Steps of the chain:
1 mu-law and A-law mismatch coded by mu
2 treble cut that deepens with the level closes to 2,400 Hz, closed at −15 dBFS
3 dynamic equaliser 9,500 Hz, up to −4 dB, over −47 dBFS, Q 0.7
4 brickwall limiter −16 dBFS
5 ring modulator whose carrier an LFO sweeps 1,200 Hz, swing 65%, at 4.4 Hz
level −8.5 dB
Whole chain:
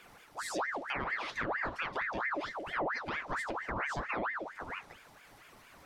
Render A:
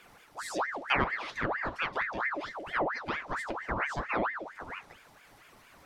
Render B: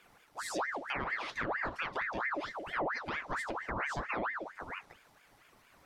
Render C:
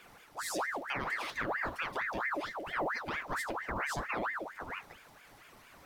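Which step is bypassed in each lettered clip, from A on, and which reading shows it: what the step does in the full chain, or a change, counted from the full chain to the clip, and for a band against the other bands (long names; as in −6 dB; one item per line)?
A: 4, change in crest factor +8.5 dB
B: 1, distortion level −26 dB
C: 2, 8 kHz band +4.0 dB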